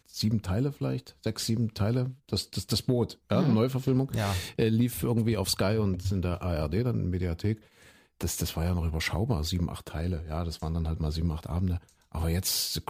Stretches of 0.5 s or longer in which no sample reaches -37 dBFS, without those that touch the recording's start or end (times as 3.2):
7.55–8.21